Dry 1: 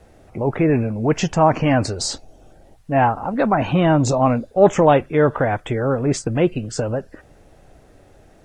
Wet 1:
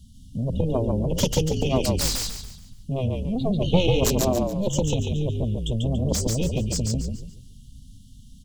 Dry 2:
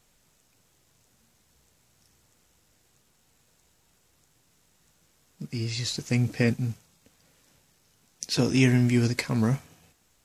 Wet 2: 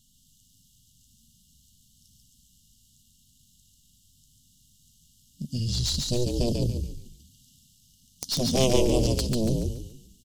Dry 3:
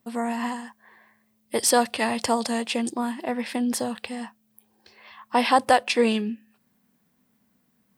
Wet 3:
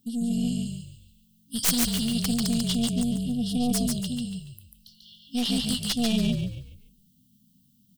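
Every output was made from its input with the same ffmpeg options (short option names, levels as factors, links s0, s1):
-filter_complex "[0:a]afftfilt=real='re*(1-between(b*sr/4096,270,2800))':imag='im*(1-between(b*sr/4096,270,2800))':win_size=4096:overlap=0.75,aeval=exprs='0.422*(cos(1*acos(clip(val(0)/0.422,-1,1)))-cos(1*PI/2))+0.0596*(cos(6*acos(clip(val(0)/0.422,-1,1)))-cos(6*PI/2))+0.188*(cos(7*acos(clip(val(0)/0.422,-1,1)))-cos(7*PI/2))':c=same,asplit=6[s0][s1][s2][s3][s4][s5];[s1]adelay=142,afreqshift=-48,volume=0.708[s6];[s2]adelay=284,afreqshift=-96,volume=0.254[s7];[s3]adelay=426,afreqshift=-144,volume=0.0923[s8];[s4]adelay=568,afreqshift=-192,volume=0.0331[s9];[s5]adelay=710,afreqshift=-240,volume=0.0119[s10];[s0][s6][s7][s8][s9][s10]amix=inputs=6:normalize=0,volume=0.708"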